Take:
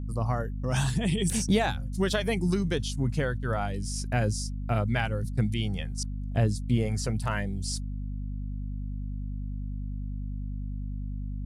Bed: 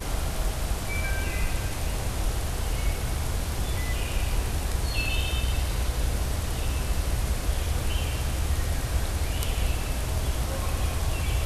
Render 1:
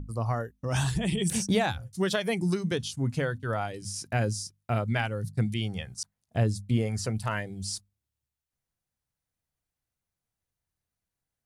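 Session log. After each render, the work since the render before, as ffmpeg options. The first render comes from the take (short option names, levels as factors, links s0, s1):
-af "bandreject=f=50:t=h:w=6,bandreject=f=100:t=h:w=6,bandreject=f=150:t=h:w=6,bandreject=f=200:t=h:w=6,bandreject=f=250:t=h:w=6"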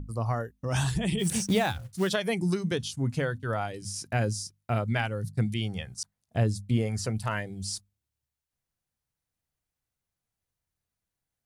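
-filter_complex "[0:a]asplit=3[s0][s1][s2];[s0]afade=t=out:st=1.18:d=0.02[s3];[s1]acrusher=bits=5:mode=log:mix=0:aa=0.000001,afade=t=in:st=1.18:d=0.02,afade=t=out:st=2.08:d=0.02[s4];[s2]afade=t=in:st=2.08:d=0.02[s5];[s3][s4][s5]amix=inputs=3:normalize=0"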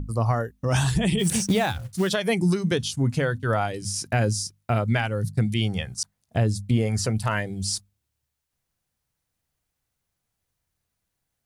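-af "acontrast=78,alimiter=limit=0.224:level=0:latency=1:release=222"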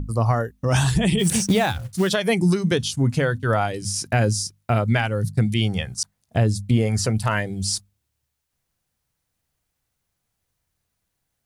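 -af "volume=1.41"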